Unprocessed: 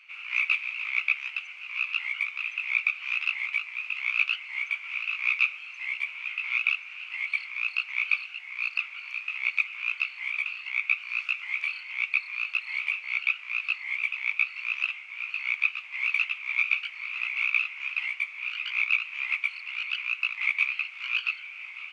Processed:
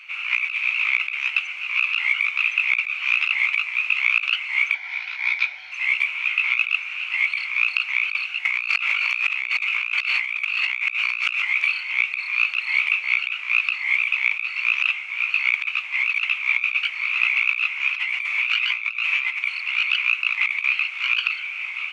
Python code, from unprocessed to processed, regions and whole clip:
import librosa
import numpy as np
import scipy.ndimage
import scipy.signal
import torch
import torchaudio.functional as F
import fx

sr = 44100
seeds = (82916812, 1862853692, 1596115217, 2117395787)

y = fx.chain(x, sr, fx.peak_eq(hz=770.0, db=8.0, octaves=0.69),
    fx.fixed_phaser(hz=1800.0, stages=8), at=(4.74, 5.72))
y = fx.chain(y, sr, fx.doubler(ms=14.0, db=-11),
    fx.env_flatten(amount_pct=70), at=(8.45, 11.45))
y = fx.chain(y, sr, fx.highpass(hz=570.0, slope=12),
    fx.over_compress(threshold_db=-37.0, ratio=-1.0),
    fx.comb(ms=6.8, depth=0.45), at=(17.94, 19.39))
y = fx.notch(y, sr, hz=4800.0, q=20.0)
y = fx.over_compress(y, sr, threshold_db=-29.0, ratio=-0.5)
y = y * librosa.db_to_amplitude(8.5)